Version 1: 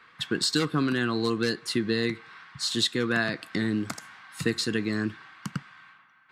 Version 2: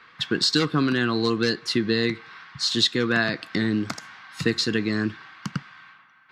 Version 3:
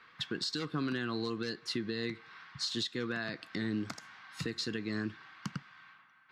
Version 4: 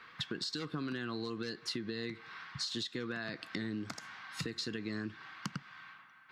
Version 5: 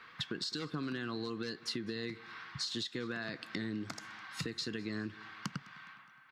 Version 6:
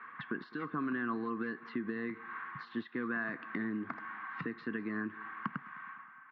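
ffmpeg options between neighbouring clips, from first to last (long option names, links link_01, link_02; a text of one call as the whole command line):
ffmpeg -i in.wav -af "highshelf=frequency=7100:width_type=q:width=1.5:gain=-7.5,volume=3.5dB" out.wav
ffmpeg -i in.wav -af "alimiter=limit=-17dB:level=0:latency=1:release=380,volume=-7.5dB" out.wav
ffmpeg -i in.wav -af "acompressor=threshold=-40dB:ratio=4,volume=4dB" out.wav
ffmpeg -i in.wav -af "aecho=1:1:207|414|621:0.0794|0.0389|0.0191" out.wav
ffmpeg -i in.wav -af "highpass=190,equalizer=frequency=240:width_type=q:width=4:gain=6,equalizer=frequency=540:width_type=q:width=4:gain=-5,equalizer=frequency=1100:width_type=q:width=4:gain=9,equalizer=frequency=1700:width_type=q:width=4:gain=5,lowpass=frequency=2100:width=0.5412,lowpass=frequency=2100:width=1.3066,volume=1dB" out.wav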